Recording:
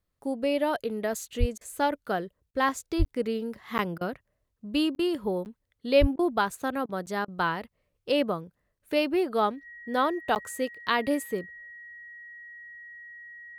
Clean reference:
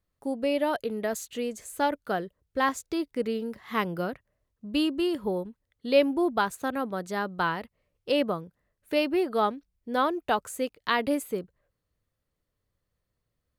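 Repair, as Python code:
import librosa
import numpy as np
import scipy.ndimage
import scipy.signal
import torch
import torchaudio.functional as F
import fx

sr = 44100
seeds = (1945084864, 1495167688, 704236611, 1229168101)

y = fx.notch(x, sr, hz=1900.0, q=30.0)
y = fx.fix_deplosive(y, sr, at_s=(1.39, 2.98, 6.0))
y = fx.fix_interpolate(y, sr, at_s=(3.05, 3.78, 4.95, 5.45, 6.18, 7.06, 8.79, 10.35), length_ms=9.8)
y = fx.fix_interpolate(y, sr, at_s=(1.58, 2.51, 3.98, 4.96, 6.16, 6.86, 7.25), length_ms=29.0)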